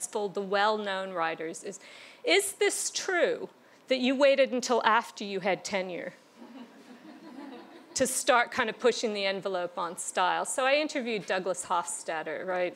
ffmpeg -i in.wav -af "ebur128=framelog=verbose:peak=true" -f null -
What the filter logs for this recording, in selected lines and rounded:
Integrated loudness:
  I:         -28.4 LUFS
  Threshold: -39.2 LUFS
Loudness range:
  LRA:         4.4 LU
  Threshold: -49.0 LUFS
  LRA low:   -31.6 LUFS
  LRA high:  -27.1 LUFS
True peak:
  Peak:       -6.4 dBFS